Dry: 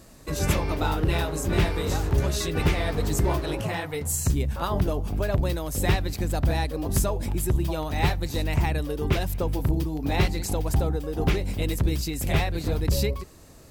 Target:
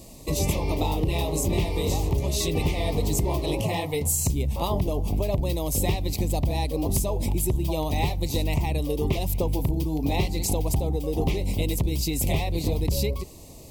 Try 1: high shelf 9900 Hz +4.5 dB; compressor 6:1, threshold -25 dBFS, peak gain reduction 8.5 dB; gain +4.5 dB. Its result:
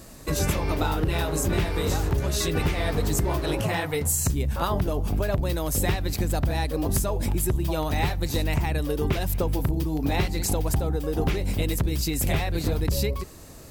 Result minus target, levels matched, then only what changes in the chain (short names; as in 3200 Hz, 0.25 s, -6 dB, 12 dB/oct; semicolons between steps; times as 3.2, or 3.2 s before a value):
2000 Hz band +5.0 dB
add first: Butterworth band-stop 1500 Hz, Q 1.3